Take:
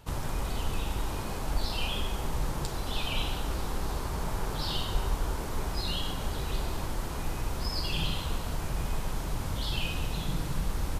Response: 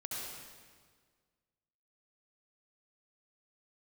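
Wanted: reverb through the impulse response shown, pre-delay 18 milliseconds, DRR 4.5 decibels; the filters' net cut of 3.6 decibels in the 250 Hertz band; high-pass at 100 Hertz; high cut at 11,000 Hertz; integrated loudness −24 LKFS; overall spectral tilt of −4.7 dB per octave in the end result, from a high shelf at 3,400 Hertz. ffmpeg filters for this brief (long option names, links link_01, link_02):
-filter_complex "[0:a]highpass=100,lowpass=11000,equalizer=frequency=250:width_type=o:gain=-5,highshelf=frequency=3400:gain=-8,asplit=2[link_01][link_02];[1:a]atrim=start_sample=2205,adelay=18[link_03];[link_02][link_03]afir=irnorm=-1:irlink=0,volume=-5.5dB[link_04];[link_01][link_04]amix=inputs=2:normalize=0,volume=13dB"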